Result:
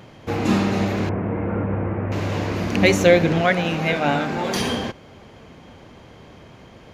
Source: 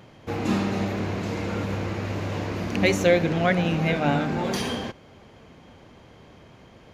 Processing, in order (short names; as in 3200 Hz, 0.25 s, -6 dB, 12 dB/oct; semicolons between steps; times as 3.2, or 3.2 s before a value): 1.09–2.12 Bessel low-pass 1300 Hz, order 8; 3.41–4.56 low shelf 280 Hz -8.5 dB; gain +5 dB